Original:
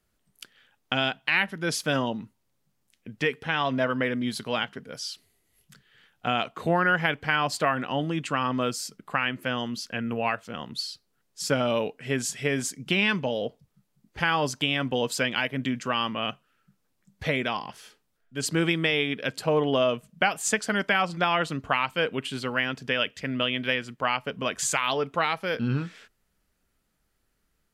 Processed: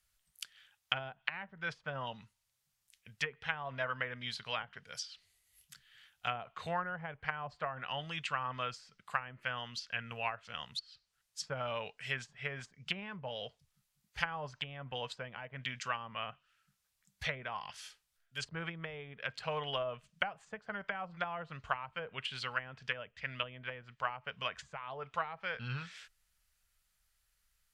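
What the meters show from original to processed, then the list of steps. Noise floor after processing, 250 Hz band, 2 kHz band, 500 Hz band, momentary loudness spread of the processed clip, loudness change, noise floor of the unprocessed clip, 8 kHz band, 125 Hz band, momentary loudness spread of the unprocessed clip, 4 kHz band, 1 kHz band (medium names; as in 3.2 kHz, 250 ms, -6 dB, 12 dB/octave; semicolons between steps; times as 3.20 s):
-82 dBFS, -21.5 dB, -11.5 dB, -15.0 dB, 9 LU, -13.0 dB, -74 dBFS, -19.0 dB, -13.0 dB, 9 LU, -11.5 dB, -11.0 dB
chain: amplifier tone stack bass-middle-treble 10-0-10; low-pass that closes with the level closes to 660 Hz, closed at -29 dBFS; trim +2 dB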